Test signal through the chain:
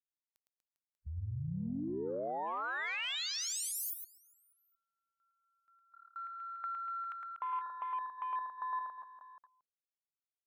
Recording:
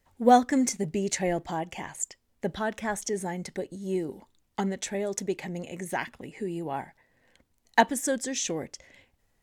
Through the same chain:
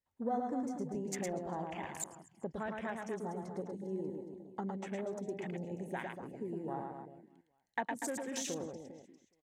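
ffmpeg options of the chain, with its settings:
ffmpeg -i in.wav -af "highpass=frequency=58:poles=1,acompressor=threshold=-33dB:ratio=2.5,aecho=1:1:110|242|400.4|590.5|818.6:0.631|0.398|0.251|0.158|0.1,afwtdn=0.01,volume=-5.5dB" out.wav

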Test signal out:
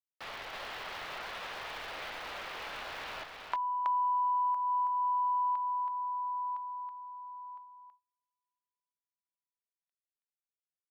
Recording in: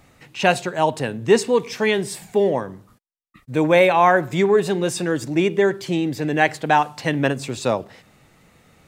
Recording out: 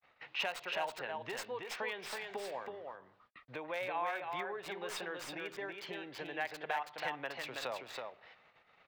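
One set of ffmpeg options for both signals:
ffmpeg -i in.wav -filter_complex "[0:a]agate=range=-44dB:threshold=-52dB:ratio=16:detection=peak,acrossover=split=5100[link_01][link_02];[link_01]acompressor=threshold=-29dB:ratio=20[link_03];[link_02]acrusher=bits=3:dc=4:mix=0:aa=0.000001[link_04];[link_03][link_04]amix=inputs=2:normalize=0,aeval=exprs='0.237*(cos(1*acos(clip(val(0)/0.237,-1,1)))-cos(1*PI/2))+0.00211*(cos(7*acos(clip(val(0)/0.237,-1,1)))-cos(7*PI/2))':channel_layout=same,acrossover=split=540 4500:gain=0.0891 1 0.178[link_05][link_06][link_07];[link_05][link_06][link_07]amix=inputs=3:normalize=0,asplit=2[link_08][link_09];[link_09]aecho=0:1:325:0.596[link_10];[link_08][link_10]amix=inputs=2:normalize=0,volume=-1.5dB" out.wav

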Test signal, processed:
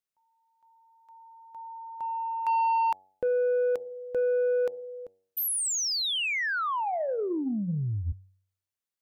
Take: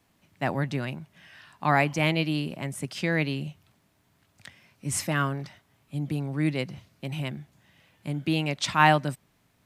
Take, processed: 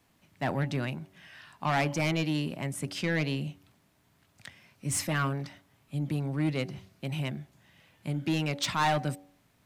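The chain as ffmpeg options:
ffmpeg -i in.wav -af "bandreject=frequency=94.88:width_type=h:width=4,bandreject=frequency=189.76:width_type=h:width=4,bandreject=frequency=284.64:width_type=h:width=4,bandreject=frequency=379.52:width_type=h:width=4,bandreject=frequency=474.4:width_type=h:width=4,bandreject=frequency=569.28:width_type=h:width=4,bandreject=frequency=664.16:width_type=h:width=4,bandreject=frequency=759.04:width_type=h:width=4,bandreject=frequency=853.92:width_type=h:width=4,asoftclip=type=tanh:threshold=-21dB" out.wav

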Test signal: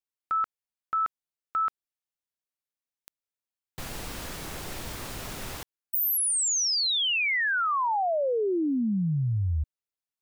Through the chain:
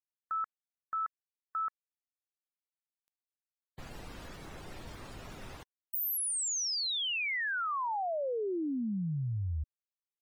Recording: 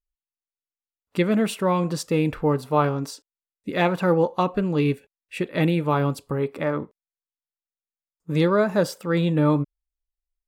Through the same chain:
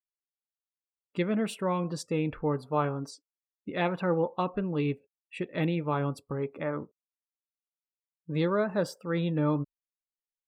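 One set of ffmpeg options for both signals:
ffmpeg -i in.wav -af "afftdn=noise_reduction=25:noise_floor=-44,volume=-7.5dB" out.wav

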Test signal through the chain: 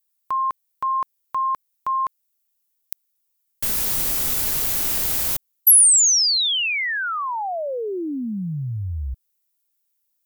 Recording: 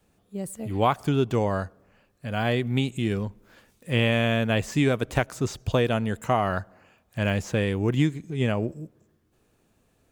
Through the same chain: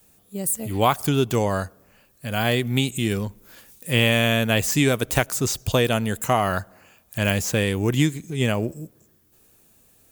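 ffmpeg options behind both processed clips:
ffmpeg -i in.wav -af "aemphasis=mode=production:type=75fm,volume=3dB" out.wav

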